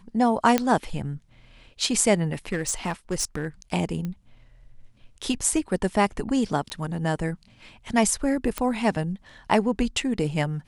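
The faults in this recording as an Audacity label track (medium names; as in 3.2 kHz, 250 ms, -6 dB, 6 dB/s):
0.580000	0.580000	pop -6 dBFS
2.320000	3.460000	clipped -20.5 dBFS
4.050000	4.050000	pop -20 dBFS
6.700000	6.700000	pop -19 dBFS
8.580000	8.580000	pop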